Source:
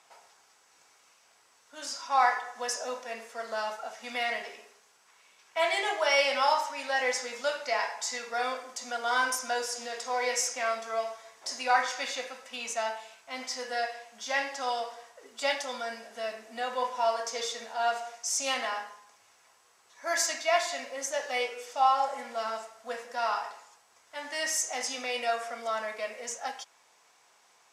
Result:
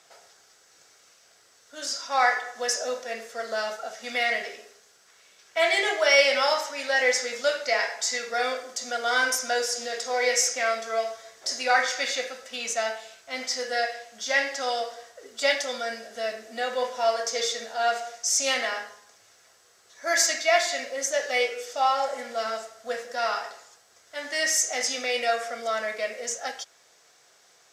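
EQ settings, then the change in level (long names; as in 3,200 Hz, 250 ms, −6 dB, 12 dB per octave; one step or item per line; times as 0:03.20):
graphic EQ with 15 bands 250 Hz −5 dB, 1,000 Hz −10 dB, 2,500 Hz −7 dB, 10,000 Hz −6 dB
dynamic equaliser 2,200 Hz, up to +5 dB, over −51 dBFS, Q 2.8
parametric band 880 Hz −4.5 dB 0.39 octaves
+8.5 dB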